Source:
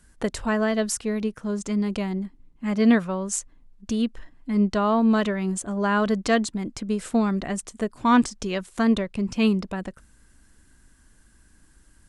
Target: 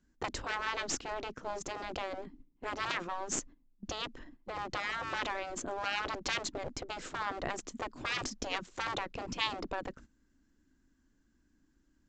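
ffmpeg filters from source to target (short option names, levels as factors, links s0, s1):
-af "aeval=exprs='0.422*(cos(1*acos(clip(val(0)/0.422,-1,1)))-cos(1*PI/2))+0.106*(cos(4*acos(clip(val(0)/0.422,-1,1)))-cos(4*PI/2))':c=same,equalizer=f=280:t=o:w=0.91:g=13,aresample=16000,aeval=exprs='clip(val(0),-1,0.0841)':c=same,aresample=44100,agate=range=0.224:threshold=0.00708:ratio=16:detection=peak,afftfilt=real='re*lt(hypot(re,im),0.251)':imag='im*lt(hypot(re,im),0.251)':win_size=1024:overlap=0.75,volume=0.596"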